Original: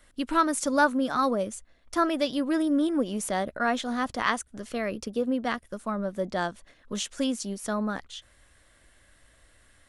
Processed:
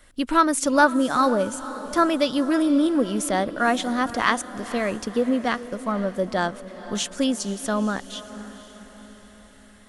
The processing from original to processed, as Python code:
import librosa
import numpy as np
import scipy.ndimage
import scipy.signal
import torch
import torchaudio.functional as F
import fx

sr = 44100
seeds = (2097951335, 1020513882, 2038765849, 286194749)

y = fx.echo_diffused(x, sr, ms=504, feedback_pct=52, wet_db=-14.5)
y = y * librosa.db_to_amplitude(5.0)